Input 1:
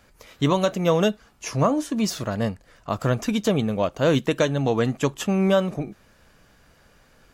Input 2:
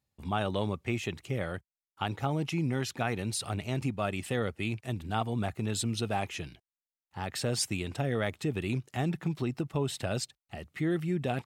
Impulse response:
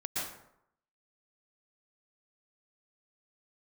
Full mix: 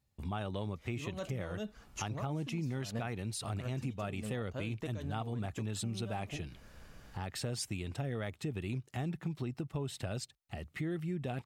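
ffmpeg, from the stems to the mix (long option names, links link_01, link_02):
-filter_complex "[0:a]alimiter=limit=-16.5dB:level=0:latency=1:release=136,adelay=550,volume=-2dB[link_01];[1:a]volume=1dB,asplit=2[link_02][link_03];[link_03]apad=whole_len=347646[link_04];[link_01][link_04]sidechaincompress=threshold=-45dB:ratio=10:attack=42:release=125[link_05];[link_05][link_02]amix=inputs=2:normalize=0,lowshelf=frequency=130:gain=8,acompressor=threshold=-42dB:ratio=2"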